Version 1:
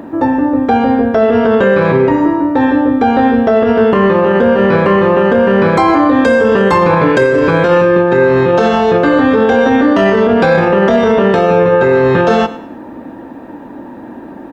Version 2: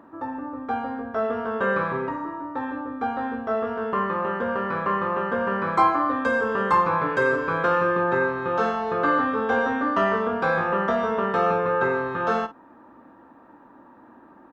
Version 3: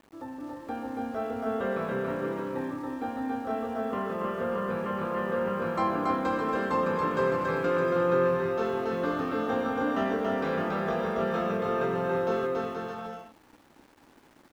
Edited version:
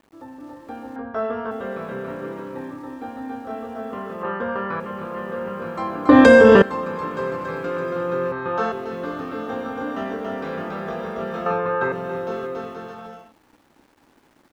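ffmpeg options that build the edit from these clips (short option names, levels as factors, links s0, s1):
-filter_complex "[1:a]asplit=4[s0][s1][s2][s3];[2:a]asplit=6[s4][s5][s6][s7][s8][s9];[s4]atrim=end=0.962[s10];[s0]atrim=start=0.958:end=1.512[s11];[s5]atrim=start=1.508:end=4.232[s12];[s1]atrim=start=4.228:end=4.802[s13];[s6]atrim=start=4.798:end=6.092[s14];[0:a]atrim=start=6.088:end=6.622[s15];[s7]atrim=start=6.618:end=8.322[s16];[s2]atrim=start=8.318:end=8.722[s17];[s8]atrim=start=8.718:end=11.462[s18];[s3]atrim=start=11.458:end=11.922[s19];[s9]atrim=start=11.918[s20];[s10][s11]acrossfade=d=0.004:c1=hsin:c2=hsin[s21];[s21][s12]acrossfade=d=0.004:c1=hsin:c2=hsin[s22];[s22][s13]acrossfade=d=0.004:c1=hsin:c2=hsin[s23];[s23][s14]acrossfade=d=0.004:c1=hsin:c2=hsin[s24];[s24][s15]acrossfade=d=0.004:c1=hsin:c2=hsin[s25];[s25][s16]acrossfade=d=0.004:c1=hsin:c2=hsin[s26];[s26][s17]acrossfade=d=0.004:c1=hsin:c2=hsin[s27];[s27][s18]acrossfade=d=0.004:c1=hsin:c2=hsin[s28];[s28][s19]acrossfade=d=0.004:c1=hsin:c2=hsin[s29];[s29][s20]acrossfade=d=0.004:c1=hsin:c2=hsin"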